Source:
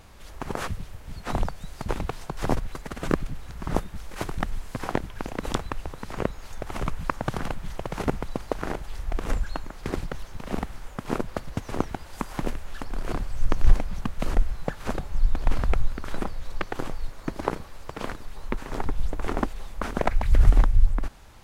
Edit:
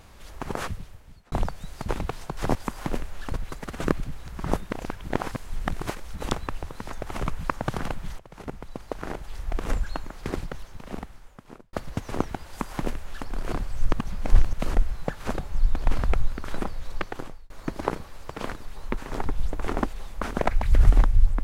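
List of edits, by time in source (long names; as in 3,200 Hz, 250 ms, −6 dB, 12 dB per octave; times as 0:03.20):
0:00.60–0:01.32: fade out
0:03.93–0:05.41: reverse
0:06.16–0:06.53: remove
0:07.79–0:09.18: fade in linear, from −18.5 dB
0:09.80–0:11.33: fade out
0:12.08–0:12.85: duplicate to 0:02.55
0:13.53–0:14.13: reverse
0:16.59–0:17.10: fade out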